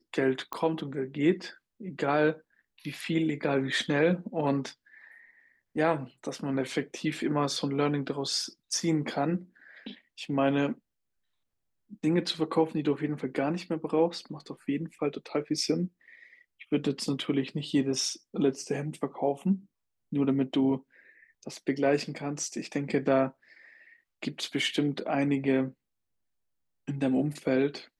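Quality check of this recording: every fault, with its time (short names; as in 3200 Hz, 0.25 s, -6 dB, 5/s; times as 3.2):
0.53 pop -18 dBFS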